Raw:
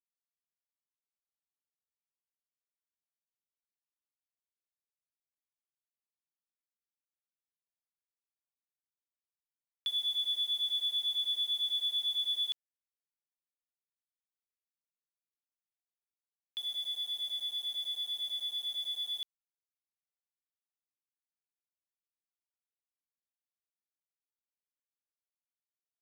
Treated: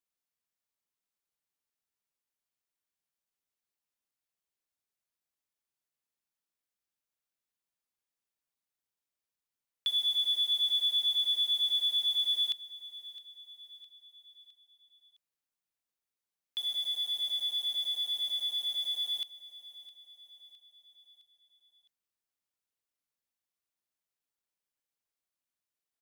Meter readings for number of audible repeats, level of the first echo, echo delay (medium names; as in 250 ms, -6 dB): 3, -17.0 dB, 661 ms